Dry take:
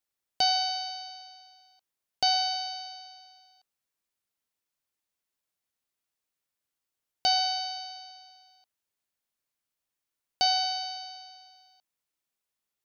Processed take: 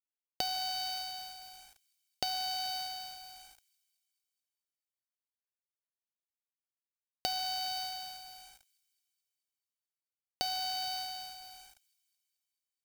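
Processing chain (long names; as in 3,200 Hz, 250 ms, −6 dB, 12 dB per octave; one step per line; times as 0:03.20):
0:00.72–0:01.14: parametric band 690 Hz −2 dB 0.68 octaves
downward compressor 10 to 1, threshold −34 dBFS, peak gain reduction 13.5 dB
log-companded quantiser 4 bits
delay with a high-pass on its return 217 ms, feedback 61%, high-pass 3,100 Hz, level −21.5 dB
level +1.5 dB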